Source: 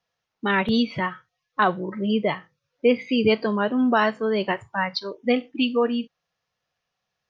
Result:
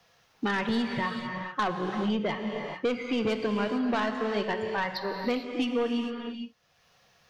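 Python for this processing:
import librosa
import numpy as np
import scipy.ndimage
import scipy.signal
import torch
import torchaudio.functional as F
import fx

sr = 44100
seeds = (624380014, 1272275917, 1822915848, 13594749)

y = 10.0 ** (-18.0 / 20.0) * np.tanh(x / 10.0 ** (-18.0 / 20.0))
y = fx.rev_gated(y, sr, seeds[0], gate_ms=470, shape='flat', drr_db=6.0)
y = fx.band_squash(y, sr, depth_pct=70)
y = y * 10.0 ** (-4.5 / 20.0)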